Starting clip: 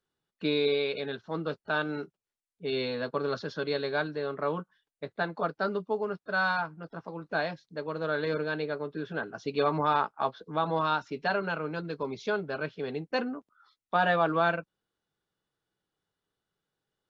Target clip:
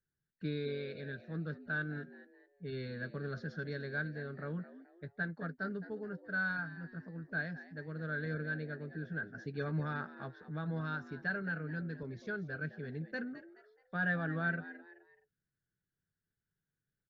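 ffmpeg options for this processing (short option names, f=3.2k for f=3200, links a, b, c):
-filter_complex "[0:a]firequalizer=gain_entry='entry(150,0);entry(250,-10);entry(1000,-27);entry(1600,-3);entry(2600,-22);entry(4700,-16)':delay=0.05:min_phase=1,asplit=4[a][b][c][d];[b]adelay=213,afreqshift=89,volume=-15dB[e];[c]adelay=426,afreqshift=178,volume=-24.1dB[f];[d]adelay=639,afreqshift=267,volume=-33.2dB[g];[a][e][f][g]amix=inputs=4:normalize=0,volume=1.5dB"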